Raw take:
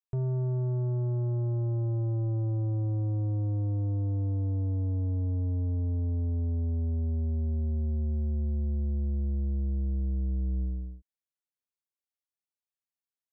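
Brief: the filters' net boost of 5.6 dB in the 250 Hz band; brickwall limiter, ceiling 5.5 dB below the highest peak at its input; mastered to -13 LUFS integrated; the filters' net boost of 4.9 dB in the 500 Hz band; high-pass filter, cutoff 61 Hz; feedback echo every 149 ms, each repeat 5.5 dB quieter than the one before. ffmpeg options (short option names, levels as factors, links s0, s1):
-af "highpass=61,equalizer=f=250:t=o:g=6,equalizer=f=500:t=o:g=4,alimiter=level_in=1.26:limit=0.0631:level=0:latency=1,volume=0.794,aecho=1:1:149|298|447|596|745|894|1043:0.531|0.281|0.149|0.079|0.0419|0.0222|0.0118,volume=10"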